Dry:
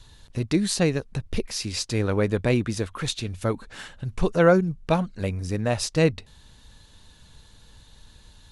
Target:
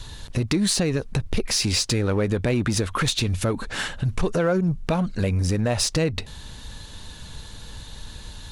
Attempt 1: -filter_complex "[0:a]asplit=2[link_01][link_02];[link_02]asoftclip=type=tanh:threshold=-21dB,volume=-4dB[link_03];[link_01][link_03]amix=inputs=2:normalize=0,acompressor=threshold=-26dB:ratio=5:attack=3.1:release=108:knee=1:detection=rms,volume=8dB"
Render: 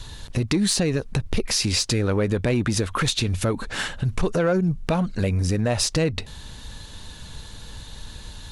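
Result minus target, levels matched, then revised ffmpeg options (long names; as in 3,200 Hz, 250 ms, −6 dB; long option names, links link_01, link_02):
soft clipping: distortion −6 dB
-filter_complex "[0:a]asplit=2[link_01][link_02];[link_02]asoftclip=type=tanh:threshold=-32.5dB,volume=-4dB[link_03];[link_01][link_03]amix=inputs=2:normalize=0,acompressor=threshold=-26dB:ratio=5:attack=3.1:release=108:knee=1:detection=rms,volume=8dB"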